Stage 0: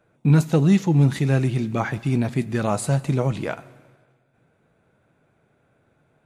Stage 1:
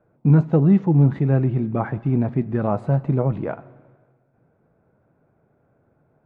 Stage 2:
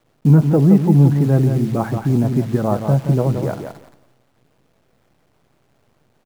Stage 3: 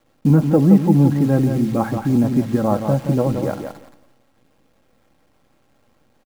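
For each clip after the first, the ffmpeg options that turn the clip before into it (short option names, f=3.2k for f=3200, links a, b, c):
-af "lowpass=1.1k,volume=1.5dB"
-af "highshelf=f=2.3k:g=-10.5,acrusher=bits=8:dc=4:mix=0:aa=0.000001,aecho=1:1:173|346|519:0.447|0.067|0.0101,volume=3.5dB"
-af "aecho=1:1:3.7:0.41"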